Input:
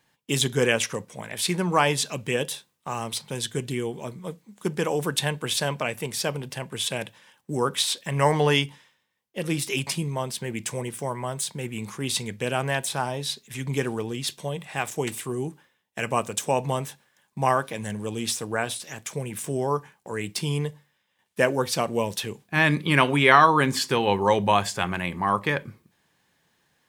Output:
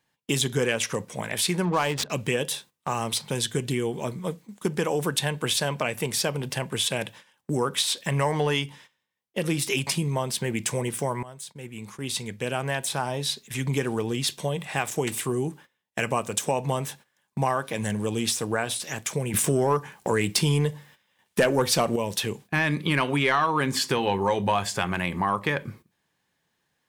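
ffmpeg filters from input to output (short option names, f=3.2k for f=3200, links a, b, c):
-filter_complex "[0:a]asettb=1/sr,asplit=3[a][b][c];[a]atrim=end=1.654[d];[b]atrim=start=1.65:end=2.1,asetpts=PTS-STARTPTS,afade=t=in:d=0.004:c=qsin,afade=t=out:st=0.446:d=0.004:c=qsin,adynamicsmooth=sensitivity=5:basefreq=560[e];[c]atrim=start=2.096[f];[d][e]acrossfade=d=0.004:c1=hsin:c2=qsin[g];[g][f]acrossfade=d=0.004:c1=qsin:c2=hsin,asettb=1/sr,asplit=3[h][i][j];[h]atrim=end=23.964[k];[i]atrim=start=23.96:end=24.65,asetpts=PTS-STARTPTS,afade=t=in:d=0.004:c=qsin,afade=t=out:st=0.686:d=0.004:c=qsin,asplit=2[l][m];[m]adelay=21,volume=-11dB[n];[l][n]amix=inputs=2:normalize=0,atrim=end_sample=30429[o];[j]atrim=start=24.646[p];[k][o]acrossfade=d=0.004:c1=hsin:c2=qsin[q];[q][p]acrossfade=d=0.004:c1=qsin:c2=hsin,asplit=4[r][s][t][u];[r]atrim=end=11.23,asetpts=PTS-STARTPTS,afade=t=out:st=11.226:d=0.004:c=hsin:silence=0.105925[v];[s]atrim=start=11.23:end=19.342,asetpts=PTS-STARTPTS,afade=t=in:d=2.77:silence=0.105925[w];[t]atrim=start=19.338:end=21.962,asetpts=PTS-STARTPTS,volume=10.5dB[x];[u]atrim=start=21.958[y];[v][w]concat=n=2:v=0:a=1[z];[z][x]acrossfade=d=0.004:c1=hsin:c2=hsin[aa];[aa][y]acrossfade=d=0.004:c1=hsin:c2=hsin,acontrast=31,agate=range=-12dB:threshold=-44dB:ratio=16:detection=peak,acompressor=threshold=-23dB:ratio=3"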